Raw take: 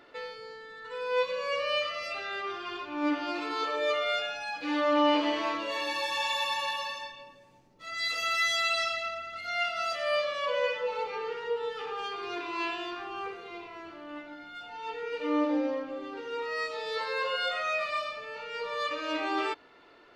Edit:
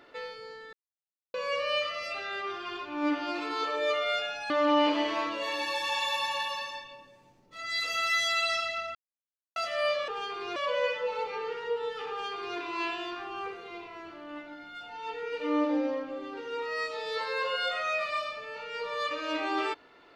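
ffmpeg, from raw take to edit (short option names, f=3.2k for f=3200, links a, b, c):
-filter_complex "[0:a]asplit=8[a][b][c][d][e][f][g][h];[a]atrim=end=0.73,asetpts=PTS-STARTPTS,afade=t=out:st=0.726:d=0.004:c=hsin[i];[b]atrim=start=0.73:end=1.34,asetpts=PTS-STARTPTS,volume=0[j];[c]atrim=start=1.34:end=4.502,asetpts=PTS-STARTPTS,afade=t=in:d=0.004:c=hsin[k];[d]atrim=start=4.778:end=9.23,asetpts=PTS-STARTPTS,afade=t=out:st=4.448:d=0.004:c=hsin[l];[e]atrim=start=9.23:end=9.84,asetpts=PTS-STARTPTS,volume=0[m];[f]atrim=start=9.84:end=10.362,asetpts=PTS-STARTPTS,afade=t=in:d=0.004:c=hsin[n];[g]atrim=start=11.898:end=12.382[o];[h]atrim=start=10.358[p];[i][j][k]concat=n=3:v=0:a=1[q];[l][m][n]concat=n=3:v=0:a=1[r];[q][r]acrossfade=d=0.004:c1=hsin:c2=hsin[s];[s][o]acrossfade=d=0.004:c1=hsin:c2=hsin[t];[t][p]acrossfade=d=0.004:c1=hsin:c2=hsin"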